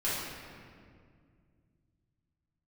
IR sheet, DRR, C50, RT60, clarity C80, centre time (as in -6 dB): -11.0 dB, -2.0 dB, 2.1 s, 1.0 dB, 0.119 s